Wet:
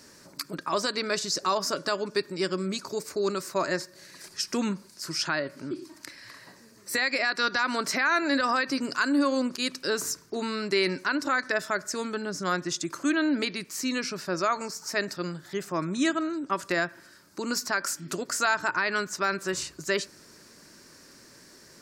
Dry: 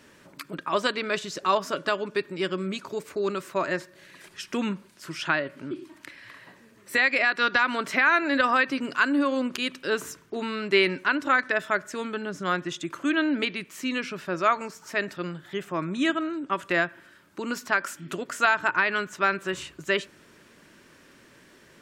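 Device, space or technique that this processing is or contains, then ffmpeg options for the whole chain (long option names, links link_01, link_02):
over-bright horn tweeter: -af "highshelf=frequency=3900:width_type=q:width=3:gain=6.5,alimiter=limit=-15dB:level=0:latency=1:release=48"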